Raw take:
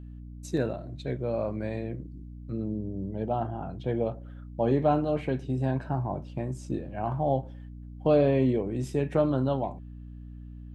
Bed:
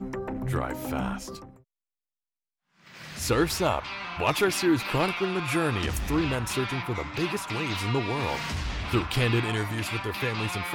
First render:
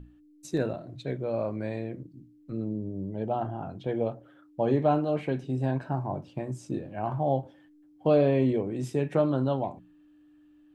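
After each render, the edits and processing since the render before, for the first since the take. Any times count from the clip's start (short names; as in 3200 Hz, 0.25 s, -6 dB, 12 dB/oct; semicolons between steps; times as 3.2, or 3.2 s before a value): notches 60/120/180/240 Hz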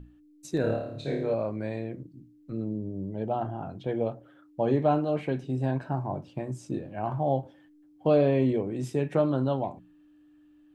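0.61–1.34 flutter echo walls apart 4.7 m, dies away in 0.64 s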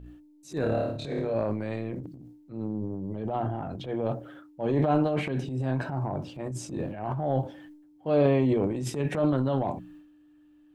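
transient shaper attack -9 dB, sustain +10 dB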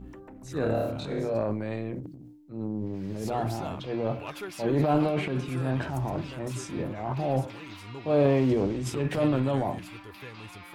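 add bed -14.5 dB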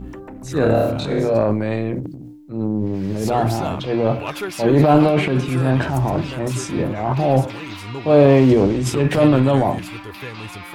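gain +11 dB; limiter -1 dBFS, peak gain reduction 1.5 dB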